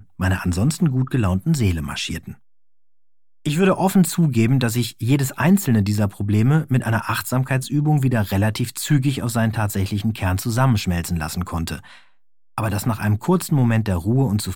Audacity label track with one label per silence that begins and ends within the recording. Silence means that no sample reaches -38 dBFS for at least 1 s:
2.340000	3.460000	silence